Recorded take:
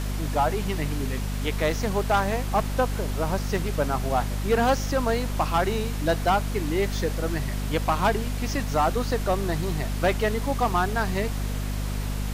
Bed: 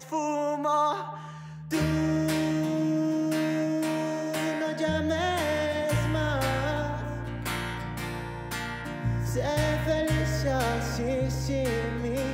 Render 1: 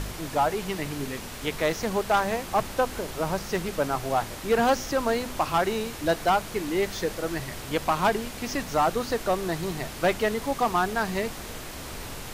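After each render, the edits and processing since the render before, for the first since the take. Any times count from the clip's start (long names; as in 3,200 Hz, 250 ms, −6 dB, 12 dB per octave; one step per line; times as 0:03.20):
hum removal 50 Hz, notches 5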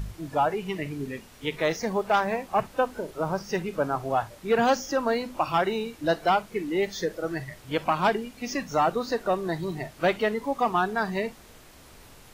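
noise reduction from a noise print 13 dB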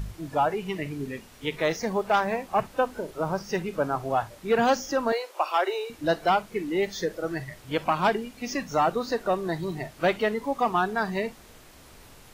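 0:05.12–0:05.90: Butterworth high-pass 360 Hz 72 dB per octave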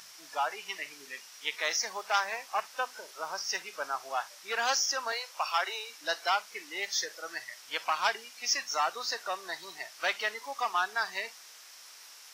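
high-pass filter 1,200 Hz 12 dB per octave
parametric band 5,500 Hz +11 dB 0.48 octaves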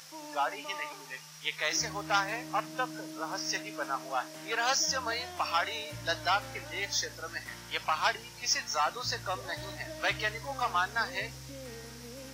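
mix in bed −17.5 dB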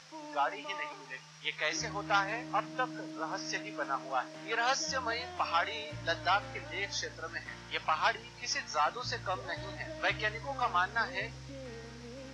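high-frequency loss of the air 120 metres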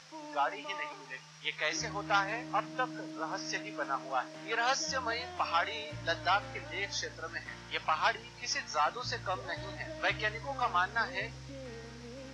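no processing that can be heard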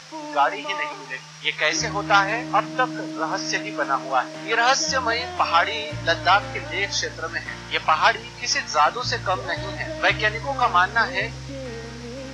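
level +12 dB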